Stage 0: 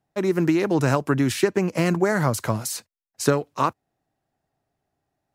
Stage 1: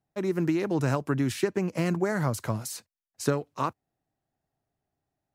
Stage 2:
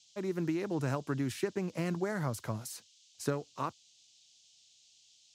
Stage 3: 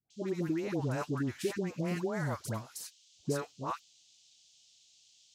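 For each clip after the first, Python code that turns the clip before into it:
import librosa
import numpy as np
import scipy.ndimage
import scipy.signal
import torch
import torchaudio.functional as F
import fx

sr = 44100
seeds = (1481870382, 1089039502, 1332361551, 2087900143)

y1 = fx.low_shelf(x, sr, hz=250.0, db=4.0)
y1 = F.gain(torch.from_numpy(y1), -7.5).numpy()
y2 = fx.dmg_noise_band(y1, sr, seeds[0], low_hz=2900.0, high_hz=7200.0, level_db=-57.0)
y2 = F.gain(torch.from_numpy(y2), -7.0).numpy()
y3 = fx.dispersion(y2, sr, late='highs', ms=105.0, hz=860.0)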